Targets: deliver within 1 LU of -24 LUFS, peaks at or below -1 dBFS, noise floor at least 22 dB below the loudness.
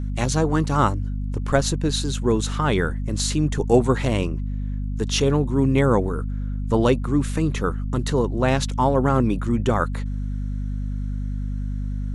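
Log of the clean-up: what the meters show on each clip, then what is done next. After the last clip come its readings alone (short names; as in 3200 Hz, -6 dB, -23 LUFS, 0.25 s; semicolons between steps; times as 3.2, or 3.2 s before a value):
hum 50 Hz; harmonics up to 250 Hz; hum level -24 dBFS; loudness -22.5 LUFS; peak -4.5 dBFS; loudness target -24.0 LUFS
-> de-hum 50 Hz, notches 5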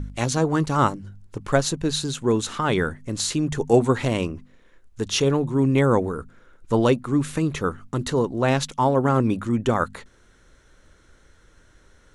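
hum none; loudness -22.5 LUFS; peak -5.0 dBFS; loudness target -24.0 LUFS
-> gain -1.5 dB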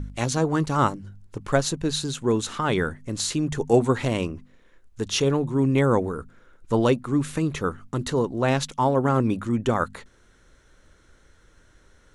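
loudness -24.0 LUFS; peak -6.5 dBFS; noise floor -58 dBFS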